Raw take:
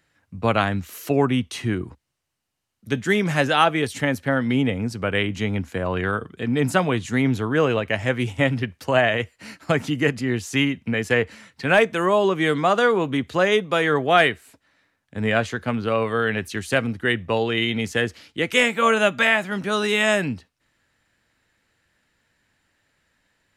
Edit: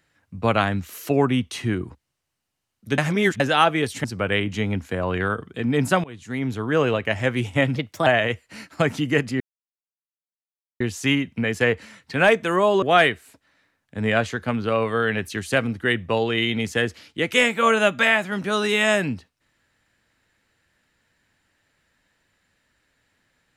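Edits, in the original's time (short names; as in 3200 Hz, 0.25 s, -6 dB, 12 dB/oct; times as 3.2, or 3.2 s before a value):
2.98–3.4 reverse
4.04–4.87 cut
6.87–7.68 fade in, from -23 dB
8.59–8.96 speed 122%
10.3 insert silence 1.40 s
12.32–14.02 cut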